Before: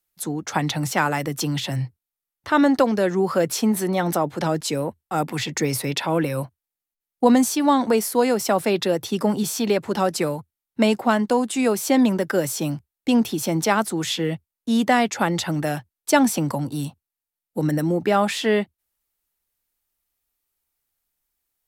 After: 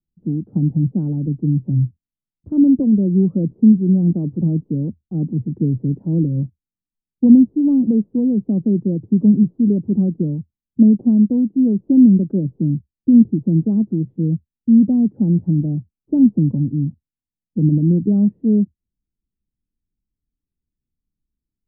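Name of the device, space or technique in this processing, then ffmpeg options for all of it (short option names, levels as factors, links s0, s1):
the neighbour's flat through the wall: -af "lowpass=f=280:w=0.5412,lowpass=f=280:w=1.3066,equalizer=f=190:t=o:w=0.43:g=4,volume=2.66"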